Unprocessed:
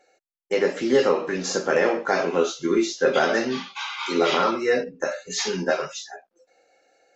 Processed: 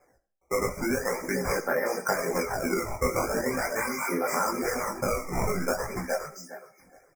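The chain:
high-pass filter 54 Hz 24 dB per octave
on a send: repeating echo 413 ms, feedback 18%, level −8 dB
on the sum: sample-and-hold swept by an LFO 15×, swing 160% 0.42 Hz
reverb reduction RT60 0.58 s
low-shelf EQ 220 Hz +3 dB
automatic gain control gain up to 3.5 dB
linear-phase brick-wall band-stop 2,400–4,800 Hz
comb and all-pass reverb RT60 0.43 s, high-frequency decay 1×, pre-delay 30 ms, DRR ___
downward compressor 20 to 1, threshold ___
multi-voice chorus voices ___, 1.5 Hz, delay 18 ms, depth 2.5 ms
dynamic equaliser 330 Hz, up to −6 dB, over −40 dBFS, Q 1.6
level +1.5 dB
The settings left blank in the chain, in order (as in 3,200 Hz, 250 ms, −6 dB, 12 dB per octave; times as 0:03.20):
15 dB, −19 dBFS, 4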